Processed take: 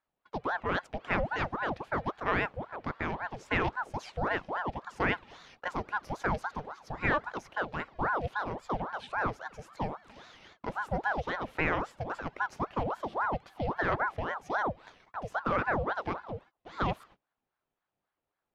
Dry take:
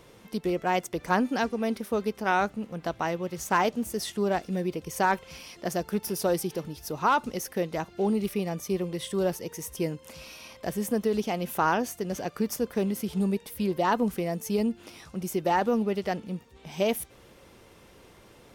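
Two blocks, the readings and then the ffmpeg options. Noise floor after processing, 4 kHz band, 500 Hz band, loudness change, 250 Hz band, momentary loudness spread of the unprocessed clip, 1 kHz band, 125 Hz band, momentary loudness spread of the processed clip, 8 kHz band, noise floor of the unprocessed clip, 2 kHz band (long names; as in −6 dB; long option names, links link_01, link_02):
below −85 dBFS, −7.0 dB, −7.5 dB, −4.5 dB, −10.5 dB, 11 LU, −3.0 dB, −3.5 dB, 12 LU, below −20 dB, −54 dBFS, +2.0 dB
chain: -af "agate=range=-29dB:threshold=-46dB:ratio=16:detection=peak,lowpass=2900,aeval=exprs='val(0)*sin(2*PI*770*n/s+770*0.65/3.7*sin(2*PI*3.7*n/s))':channel_layout=same,volume=-2dB"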